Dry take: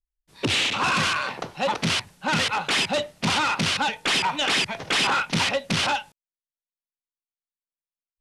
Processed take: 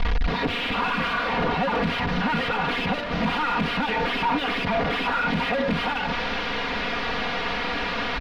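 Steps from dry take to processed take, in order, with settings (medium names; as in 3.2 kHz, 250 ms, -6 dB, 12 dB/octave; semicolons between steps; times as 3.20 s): one-bit delta coder 32 kbps, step -27.5 dBFS; waveshaping leveller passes 3; hard clipper -22.5 dBFS, distortion -7 dB; distance through air 380 m; comb 4.2 ms, depth 78%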